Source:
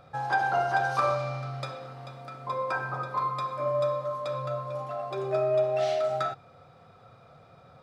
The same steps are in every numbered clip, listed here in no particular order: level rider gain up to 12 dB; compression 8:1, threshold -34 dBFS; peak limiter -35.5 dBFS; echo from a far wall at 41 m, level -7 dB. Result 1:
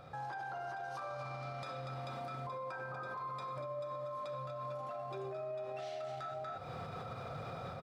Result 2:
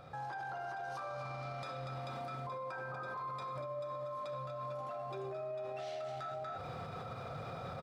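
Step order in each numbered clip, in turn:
level rider > echo from a far wall > compression > peak limiter; echo from a far wall > compression > level rider > peak limiter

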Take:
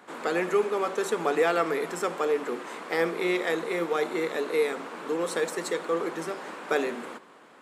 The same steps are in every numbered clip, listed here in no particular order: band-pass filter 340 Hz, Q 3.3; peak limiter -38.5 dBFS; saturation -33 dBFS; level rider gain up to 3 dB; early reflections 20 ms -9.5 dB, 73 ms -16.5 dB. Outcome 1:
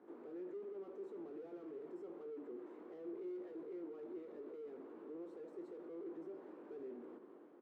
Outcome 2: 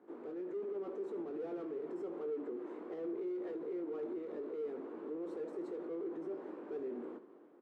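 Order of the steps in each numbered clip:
level rider > saturation > early reflections > peak limiter > band-pass filter; saturation > band-pass filter > peak limiter > level rider > early reflections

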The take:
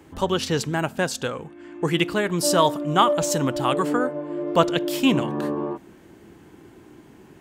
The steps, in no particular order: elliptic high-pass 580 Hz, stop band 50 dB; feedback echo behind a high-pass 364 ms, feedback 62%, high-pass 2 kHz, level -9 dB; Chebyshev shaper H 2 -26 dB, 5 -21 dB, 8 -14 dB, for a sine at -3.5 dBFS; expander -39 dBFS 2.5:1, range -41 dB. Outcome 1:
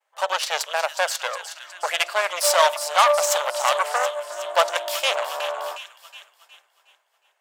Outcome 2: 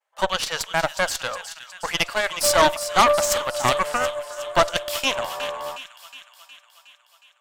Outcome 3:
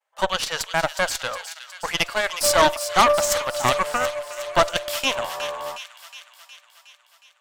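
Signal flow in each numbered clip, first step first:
feedback echo behind a high-pass > Chebyshev shaper > elliptic high-pass > expander; elliptic high-pass > expander > feedback echo behind a high-pass > Chebyshev shaper; elliptic high-pass > expander > Chebyshev shaper > feedback echo behind a high-pass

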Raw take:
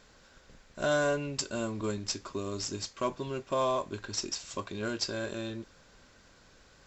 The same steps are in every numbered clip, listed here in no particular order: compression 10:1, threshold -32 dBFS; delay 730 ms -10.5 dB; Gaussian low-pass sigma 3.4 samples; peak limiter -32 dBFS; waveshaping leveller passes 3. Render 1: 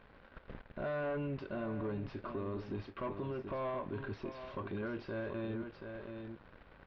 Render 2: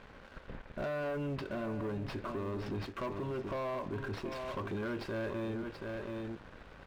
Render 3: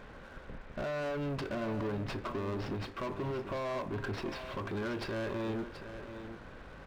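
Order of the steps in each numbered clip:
waveshaping leveller > compression > delay > peak limiter > Gaussian low-pass; compression > Gaussian low-pass > waveshaping leveller > delay > peak limiter; Gaussian low-pass > compression > peak limiter > waveshaping leveller > delay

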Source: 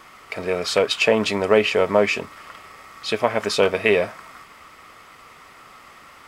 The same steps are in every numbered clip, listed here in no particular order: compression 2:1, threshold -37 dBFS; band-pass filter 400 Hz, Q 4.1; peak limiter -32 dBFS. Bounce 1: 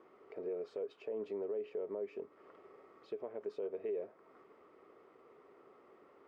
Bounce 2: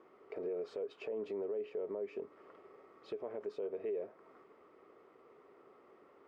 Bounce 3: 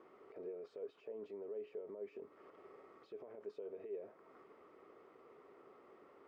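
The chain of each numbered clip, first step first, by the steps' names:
compression > band-pass filter > peak limiter; band-pass filter > compression > peak limiter; compression > peak limiter > band-pass filter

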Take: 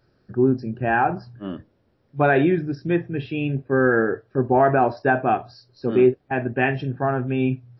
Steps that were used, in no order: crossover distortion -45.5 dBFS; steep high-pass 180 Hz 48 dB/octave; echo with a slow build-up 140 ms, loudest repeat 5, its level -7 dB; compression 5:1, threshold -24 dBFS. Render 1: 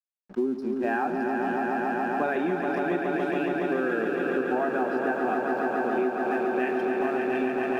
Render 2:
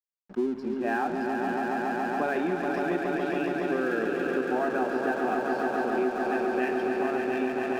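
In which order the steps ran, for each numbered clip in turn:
steep high-pass > crossover distortion > echo with a slow build-up > compression; echo with a slow build-up > compression > steep high-pass > crossover distortion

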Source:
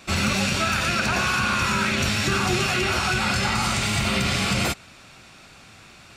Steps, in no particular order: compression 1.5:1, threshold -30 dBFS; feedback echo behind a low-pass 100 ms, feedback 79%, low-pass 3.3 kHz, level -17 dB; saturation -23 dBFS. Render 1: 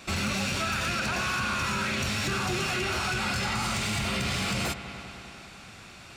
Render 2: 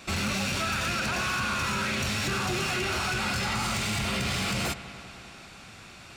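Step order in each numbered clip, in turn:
feedback echo behind a low-pass > compression > saturation; saturation > feedback echo behind a low-pass > compression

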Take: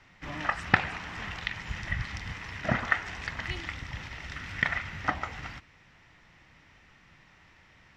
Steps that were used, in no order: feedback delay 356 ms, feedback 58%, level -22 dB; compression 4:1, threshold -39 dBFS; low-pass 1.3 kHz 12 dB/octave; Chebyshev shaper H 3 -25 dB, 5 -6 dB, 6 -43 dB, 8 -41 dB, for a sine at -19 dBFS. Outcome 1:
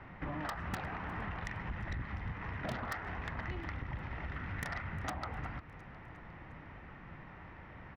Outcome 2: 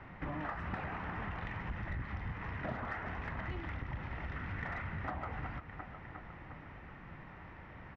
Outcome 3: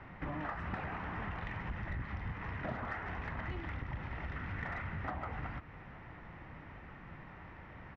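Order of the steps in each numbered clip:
low-pass > Chebyshev shaper > compression > feedback delay; feedback delay > Chebyshev shaper > low-pass > compression; Chebyshev shaper > low-pass > compression > feedback delay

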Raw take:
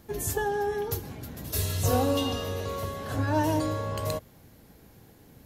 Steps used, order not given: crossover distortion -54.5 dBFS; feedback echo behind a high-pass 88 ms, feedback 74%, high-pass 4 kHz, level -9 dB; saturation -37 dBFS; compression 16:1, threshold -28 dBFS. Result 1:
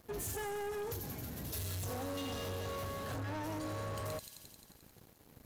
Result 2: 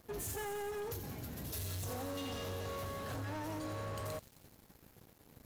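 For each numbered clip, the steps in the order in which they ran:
crossover distortion > feedback echo behind a high-pass > compression > saturation; compression > saturation > feedback echo behind a high-pass > crossover distortion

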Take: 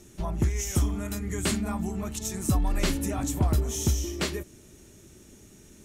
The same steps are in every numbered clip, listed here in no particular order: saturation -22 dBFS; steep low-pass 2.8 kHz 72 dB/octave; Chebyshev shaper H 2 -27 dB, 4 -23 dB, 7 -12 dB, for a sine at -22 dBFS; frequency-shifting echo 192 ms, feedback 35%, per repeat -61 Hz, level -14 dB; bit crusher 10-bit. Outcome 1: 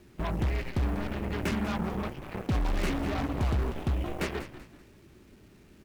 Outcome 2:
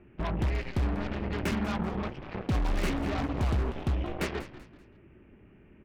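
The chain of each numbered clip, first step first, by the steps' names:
steep low-pass > bit crusher > Chebyshev shaper > frequency-shifting echo > saturation; bit crusher > steep low-pass > Chebyshev shaper > saturation > frequency-shifting echo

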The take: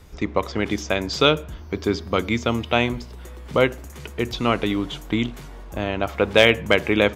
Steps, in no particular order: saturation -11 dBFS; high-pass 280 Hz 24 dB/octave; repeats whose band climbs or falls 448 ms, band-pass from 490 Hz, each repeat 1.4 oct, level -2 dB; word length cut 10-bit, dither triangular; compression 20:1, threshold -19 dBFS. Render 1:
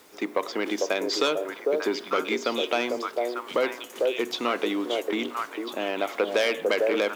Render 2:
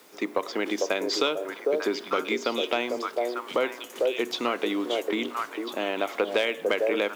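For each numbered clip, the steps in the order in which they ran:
repeats whose band climbs or falls > saturation > compression > high-pass > word length cut; repeats whose band climbs or falls > compression > word length cut > high-pass > saturation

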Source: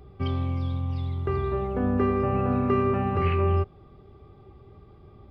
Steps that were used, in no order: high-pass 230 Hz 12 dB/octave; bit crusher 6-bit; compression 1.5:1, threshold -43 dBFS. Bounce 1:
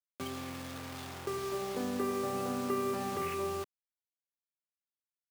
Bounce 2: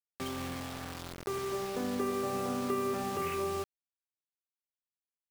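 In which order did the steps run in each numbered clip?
bit crusher > compression > high-pass; high-pass > bit crusher > compression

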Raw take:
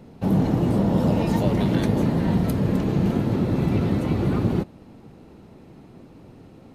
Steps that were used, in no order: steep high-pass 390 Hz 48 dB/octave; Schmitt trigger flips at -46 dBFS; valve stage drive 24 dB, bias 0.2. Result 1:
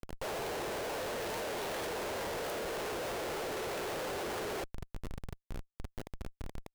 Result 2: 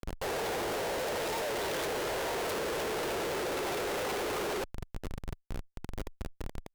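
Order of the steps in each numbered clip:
valve stage > steep high-pass > Schmitt trigger; steep high-pass > Schmitt trigger > valve stage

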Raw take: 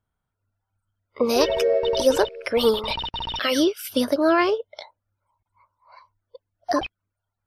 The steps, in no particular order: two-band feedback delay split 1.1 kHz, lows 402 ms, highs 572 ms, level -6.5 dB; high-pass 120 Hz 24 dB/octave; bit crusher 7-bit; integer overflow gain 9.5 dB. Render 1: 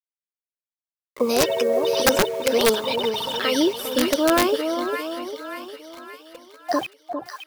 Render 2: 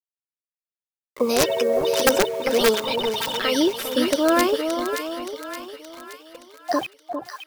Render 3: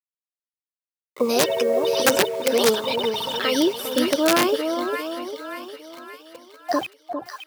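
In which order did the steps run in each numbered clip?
high-pass > bit crusher > two-band feedback delay > integer overflow; high-pass > integer overflow > bit crusher > two-band feedback delay; bit crusher > two-band feedback delay > integer overflow > high-pass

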